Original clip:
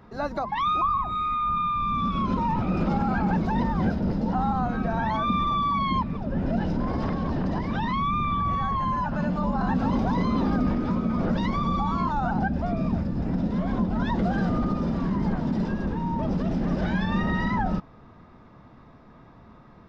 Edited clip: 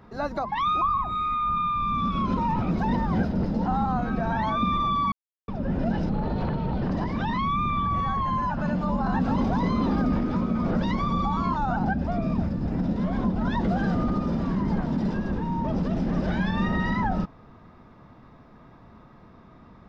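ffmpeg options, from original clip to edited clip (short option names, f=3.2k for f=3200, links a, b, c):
-filter_complex "[0:a]asplit=6[a][b][c][d][e][f];[a]atrim=end=2.712[g];[b]atrim=start=3.378:end=5.79,asetpts=PTS-STARTPTS,afade=t=out:st=2.408:d=0.004:c=hsin[h];[c]atrim=start=5.79:end=6.15,asetpts=PTS-STARTPTS,volume=0[i];[d]atrim=start=6.15:end=6.764,asetpts=PTS-STARTPTS,afade=t=in:d=0.004:c=hsin[j];[e]atrim=start=6.76:end=7.37,asetpts=PTS-STARTPTS,asetrate=36603,aresample=44100[k];[f]atrim=start=7.366[l];[h][i][j]concat=n=3:v=0:a=1[m];[g][m]acrossfade=d=0.004:c1=hsin:c2=hsin[n];[n][k]acrossfade=d=0.004:c1=hsin:c2=hsin[o];[o][l]acrossfade=d=0.004:c1=hsin:c2=hsin"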